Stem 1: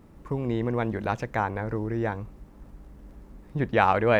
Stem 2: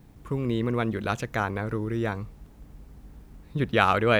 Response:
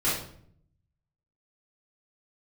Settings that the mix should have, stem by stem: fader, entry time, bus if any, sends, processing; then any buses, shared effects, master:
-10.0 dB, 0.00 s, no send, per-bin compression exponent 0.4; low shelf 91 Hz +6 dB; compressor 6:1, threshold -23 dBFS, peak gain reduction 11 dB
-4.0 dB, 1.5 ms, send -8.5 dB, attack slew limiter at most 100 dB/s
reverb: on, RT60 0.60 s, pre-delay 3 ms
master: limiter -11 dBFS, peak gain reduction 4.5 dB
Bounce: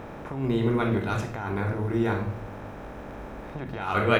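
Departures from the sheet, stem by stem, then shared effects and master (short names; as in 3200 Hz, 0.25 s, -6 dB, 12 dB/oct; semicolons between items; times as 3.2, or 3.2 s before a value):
stem 2: polarity flipped; master: missing limiter -11 dBFS, peak gain reduction 4.5 dB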